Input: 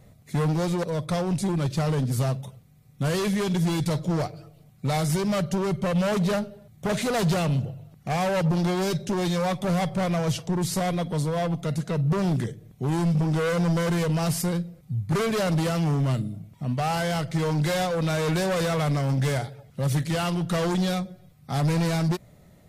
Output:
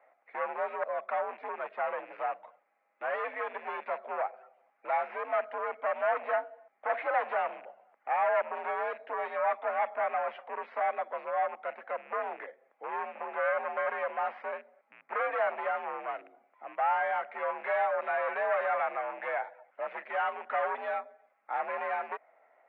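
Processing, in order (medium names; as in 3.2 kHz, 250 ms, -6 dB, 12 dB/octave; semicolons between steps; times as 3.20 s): rattle on loud lows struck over -25 dBFS, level -35 dBFS; mistuned SSB +62 Hz 540–2100 Hz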